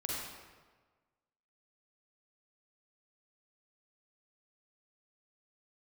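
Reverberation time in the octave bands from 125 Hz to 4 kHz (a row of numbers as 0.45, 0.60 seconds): 1.5, 1.4, 1.4, 1.4, 1.2, 0.95 seconds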